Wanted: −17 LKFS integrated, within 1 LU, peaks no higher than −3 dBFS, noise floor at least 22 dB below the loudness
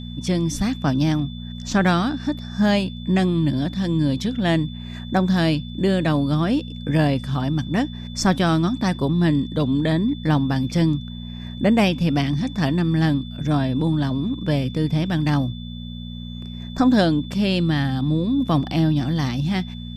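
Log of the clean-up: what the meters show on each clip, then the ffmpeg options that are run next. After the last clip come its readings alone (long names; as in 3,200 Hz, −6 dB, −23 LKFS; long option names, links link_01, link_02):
mains hum 60 Hz; hum harmonics up to 240 Hz; level of the hum −32 dBFS; interfering tone 3,500 Hz; level of the tone −41 dBFS; integrated loudness −21.5 LKFS; sample peak −4.0 dBFS; target loudness −17.0 LKFS
→ -af "bandreject=frequency=60:width_type=h:width=4,bandreject=frequency=120:width_type=h:width=4,bandreject=frequency=180:width_type=h:width=4,bandreject=frequency=240:width_type=h:width=4"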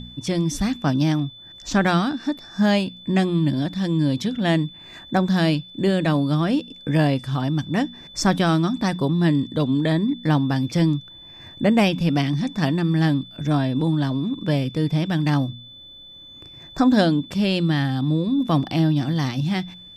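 mains hum none found; interfering tone 3,500 Hz; level of the tone −41 dBFS
→ -af "bandreject=frequency=3500:width=30"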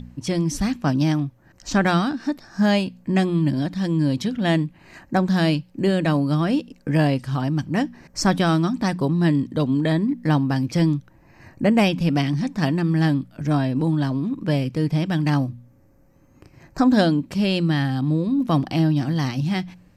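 interfering tone none found; integrated loudness −21.5 LKFS; sample peak −5.0 dBFS; target loudness −17.0 LKFS
→ -af "volume=4.5dB,alimiter=limit=-3dB:level=0:latency=1"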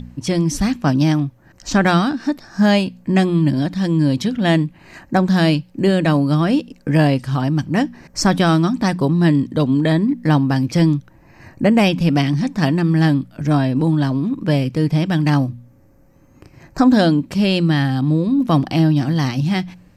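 integrated loudness −17.5 LKFS; sample peak −3.0 dBFS; background noise floor −50 dBFS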